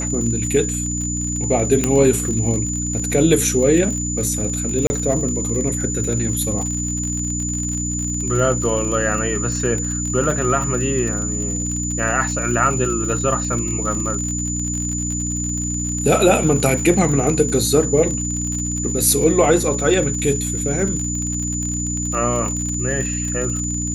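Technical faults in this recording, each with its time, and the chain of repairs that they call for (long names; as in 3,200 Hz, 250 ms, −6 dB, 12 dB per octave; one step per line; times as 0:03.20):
surface crackle 47 per second −24 dBFS
mains hum 60 Hz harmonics 5 −25 dBFS
whistle 7,000 Hz −24 dBFS
0:01.84: click −4 dBFS
0:04.87–0:04.90: drop-out 30 ms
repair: click removal
hum removal 60 Hz, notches 5
notch filter 7,000 Hz, Q 30
repair the gap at 0:04.87, 30 ms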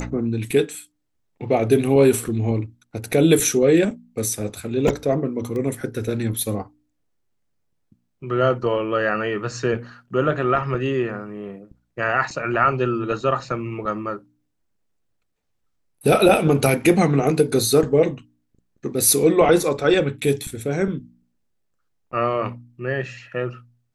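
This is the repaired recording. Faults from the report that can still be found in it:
none of them is left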